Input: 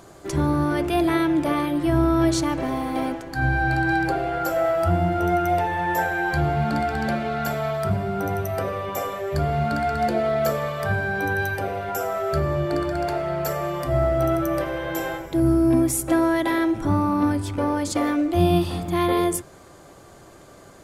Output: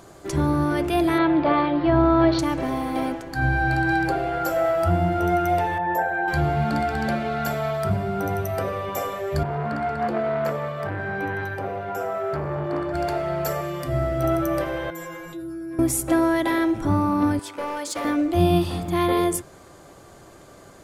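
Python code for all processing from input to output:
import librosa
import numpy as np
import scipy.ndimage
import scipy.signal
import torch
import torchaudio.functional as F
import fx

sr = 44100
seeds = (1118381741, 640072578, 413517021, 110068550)

y = fx.chain(x, sr, fx.ellip_lowpass(hz=4500.0, order=4, stop_db=50),
    fx.peak_eq(hz=810.0, db=7.0, octaves=1.7), at=(1.18, 2.39))
y = fx.chain(y, sr, fx.envelope_sharpen(power=1.5),
    fx.highpass(hz=180.0, slope=6), at=(5.78, 6.28))
y = fx.chain(y, sr, fx.highpass(hz=88.0, slope=24),
    fx.high_shelf(hz=3100.0, db=-12.0),
    fx.transformer_sat(knee_hz=790.0), at=(9.43, 12.94))
y = fx.chain(y, sr, fx.highpass(hz=68.0, slope=12),
    fx.peak_eq(hz=840.0, db=-7.0, octaves=1.1), at=(13.61, 14.24))
y = fx.chain(y, sr, fx.peak_eq(hz=1400.0, db=8.0, octaves=0.33),
    fx.stiff_resonator(f0_hz=170.0, decay_s=0.6, stiffness=0.002),
    fx.env_flatten(amount_pct=70), at=(14.9, 15.79))
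y = fx.chain(y, sr, fx.highpass(hz=510.0, slope=12),
    fx.overload_stage(gain_db=23.5),
    fx.notch(hz=760.0, q=15.0), at=(17.39, 18.05))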